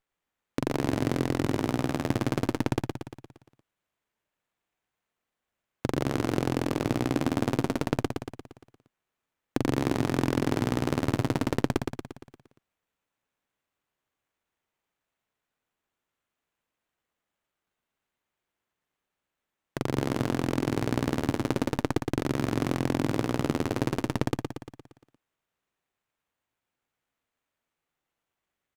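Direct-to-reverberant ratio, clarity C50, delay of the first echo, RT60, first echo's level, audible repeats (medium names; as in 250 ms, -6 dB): no reverb, no reverb, 116 ms, no reverb, -5.0 dB, 6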